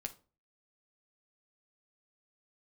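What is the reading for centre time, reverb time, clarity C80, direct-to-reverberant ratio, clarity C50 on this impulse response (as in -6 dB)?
5 ms, 0.35 s, 22.5 dB, 5.5 dB, 15.5 dB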